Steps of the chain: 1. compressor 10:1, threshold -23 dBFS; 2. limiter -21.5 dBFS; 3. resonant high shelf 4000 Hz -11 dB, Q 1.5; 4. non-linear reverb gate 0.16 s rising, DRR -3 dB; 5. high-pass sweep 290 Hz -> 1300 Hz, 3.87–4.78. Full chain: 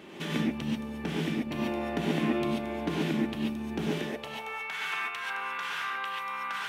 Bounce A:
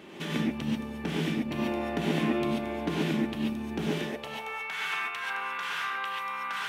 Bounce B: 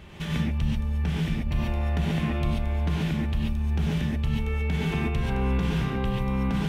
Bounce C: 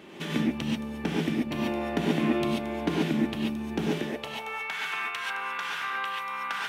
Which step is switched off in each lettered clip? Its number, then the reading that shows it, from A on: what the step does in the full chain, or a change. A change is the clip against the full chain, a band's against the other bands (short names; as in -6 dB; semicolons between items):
1, mean gain reduction 5.0 dB; 5, 125 Hz band +13.5 dB; 2, mean gain reduction 1.5 dB